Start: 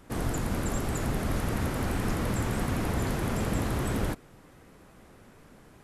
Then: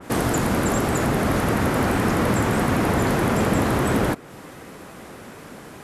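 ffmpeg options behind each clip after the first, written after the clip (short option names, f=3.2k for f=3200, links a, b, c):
-filter_complex "[0:a]highpass=f=190:p=1,asplit=2[a][b];[b]alimiter=level_in=7.5dB:limit=-24dB:level=0:latency=1:release=272,volume=-7.5dB,volume=1.5dB[c];[a][c]amix=inputs=2:normalize=0,adynamicequalizer=threshold=0.00447:dfrequency=2500:dqfactor=0.7:tfrequency=2500:tqfactor=0.7:attack=5:release=100:ratio=0.375:range=2.5:mode=cutabove:tftype=highshelf,volume=9dB"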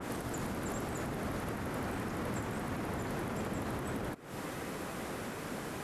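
-af "acompressor=threshold=-30dB:ratio=2.5,alimiter=level_in=4.5dB:limit=-24dB:level=0:latency=1:release=262,volume=-4.5dB"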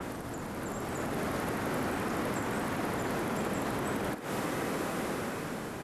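-filter_complex "[0:a]acrossover=split=400|1800[a][b][c];[a]acompressor=threshold=-50dB:ratio=4[d];[b]acompressor=threshold=-52dB:ratio=4[e];[c]acompressor=threshold=-60dB:ratio=4[f];[d][e][f]amix=inputs=3:normalize=0,asplit=2[g][h];[h]adelay=50,volume=-9dB[i];[g][i]amix=inputs=2:normalize=0,acrossover=split=150[j][k];[k]dynaudnorm=f=250:g=7:m=7dB[l];[j][l]amix=inputs=2:normalize=0,volume=8dB"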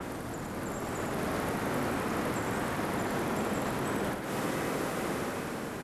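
-af "aecho=1:1:109:0.501"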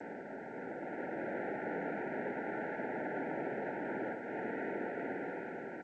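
-af "asuperstop=centerf=1200:order=12:qfactor=2.6,highpass=f=330:t=q:w=0.5412,highpass=f=330:t=q:w=1.307,lowpass=f=2.2k:t=q:w=0.5176,lowpass=f=2.2k:t=q:w=0.7071,lowpass=f=2.2k:t=q:w=1.932,afreqshift=-73,volume=-3.5dB" -ar 16000 -c:a g722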